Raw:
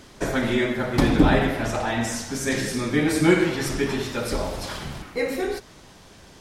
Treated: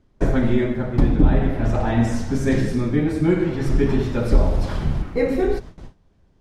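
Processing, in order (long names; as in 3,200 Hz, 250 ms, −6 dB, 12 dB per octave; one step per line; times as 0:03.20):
noise gate with hold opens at −36 dBFS
spectral tilt −3.5 dB per octave
speech leveller within 5 dB 0.5 s
level −3.5 dB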